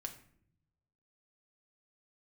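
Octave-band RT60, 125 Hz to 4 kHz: 1.4 s, 1.1 s, 0.75 s, 0.55 s, 0.55 s, 0.40 s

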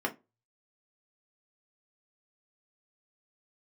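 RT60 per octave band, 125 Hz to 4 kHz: 0.55 s, 0.25 s, 0.25 s, 0.20 s, 0.20 s, 0.15 s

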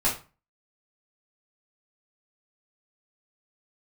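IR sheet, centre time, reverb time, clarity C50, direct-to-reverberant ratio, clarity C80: 24 ms, 0.35 s, 8.5 dB, -6.5 dB, 14.5 dB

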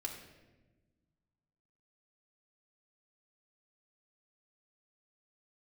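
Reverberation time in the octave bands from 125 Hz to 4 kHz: 2.3 s, 2.0 s, 1.4 s, 1.0 s, 1.0 s, 0.80 s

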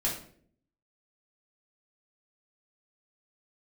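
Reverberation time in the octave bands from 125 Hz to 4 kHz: 0.80 s, 0.80 s, 0.65 s, 0.45 s, 0.45 s, 0.40 s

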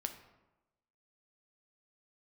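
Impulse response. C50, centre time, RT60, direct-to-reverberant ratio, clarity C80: 10.0 dB, 14 ms, 1.0 s, 6.0 dB, 12.5 dB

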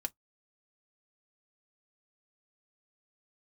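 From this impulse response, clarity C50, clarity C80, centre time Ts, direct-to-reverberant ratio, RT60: 36.5 dB, 54.5 dB, 2 ms, 3.5 dB, no single decay rate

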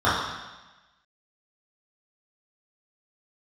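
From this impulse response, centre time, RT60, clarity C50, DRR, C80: 76 ms, 1.1 s, 0.5 dB, -11.5 dB, 3.5 dB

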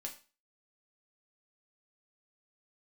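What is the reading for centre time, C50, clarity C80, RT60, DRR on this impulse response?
14 ms, 11.5 dB, 16.5 dB, 0.35 s, 1.0 dB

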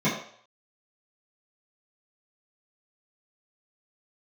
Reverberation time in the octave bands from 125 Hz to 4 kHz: 0.35 s, 0.40 s, 0.55 s, 0.55 s, 0.55 s, 0.60 s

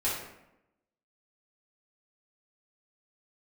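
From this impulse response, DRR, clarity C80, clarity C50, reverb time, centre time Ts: -8.5 dB, 5.5 dB, 1.5 dB, 0.85 s, 54 ms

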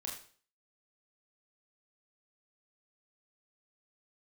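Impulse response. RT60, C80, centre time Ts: 0.45 s, 9.5 dB, 33 ms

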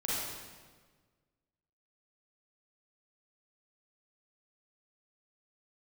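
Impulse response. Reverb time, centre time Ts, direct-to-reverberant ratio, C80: 1.5 s, 116 ms, -8.0 dB, -0.5 dB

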